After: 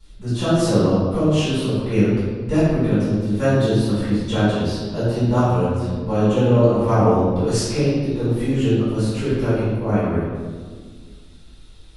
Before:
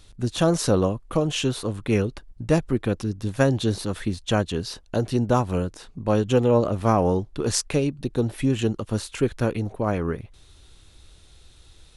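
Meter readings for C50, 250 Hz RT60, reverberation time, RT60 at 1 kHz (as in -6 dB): -3.0 dB, 2.5 s, 1.6 s, 1.4 s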